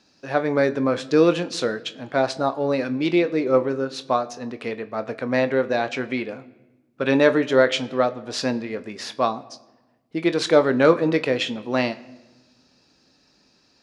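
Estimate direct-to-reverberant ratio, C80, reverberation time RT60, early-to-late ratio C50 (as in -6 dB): 10.5 dB, 20.5 dB, 1.1 s, 18.0 dB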